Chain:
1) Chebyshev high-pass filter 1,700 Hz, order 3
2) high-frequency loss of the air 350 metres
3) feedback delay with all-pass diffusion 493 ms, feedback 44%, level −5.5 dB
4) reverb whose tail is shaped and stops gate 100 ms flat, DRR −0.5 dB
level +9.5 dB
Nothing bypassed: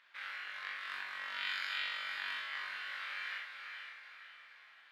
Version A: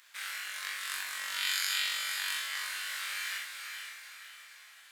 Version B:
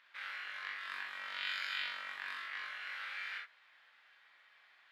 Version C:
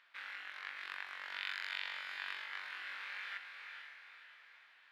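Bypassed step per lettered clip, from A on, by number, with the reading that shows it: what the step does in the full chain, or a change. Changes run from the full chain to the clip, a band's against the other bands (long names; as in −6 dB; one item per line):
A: 2, 8 kHz band +24.0 dB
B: 3, echo-to-direct ratio 2.5 dB to 0.5 dB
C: 4, echo-to-direct ratio 2.5 dB to −4.5 dB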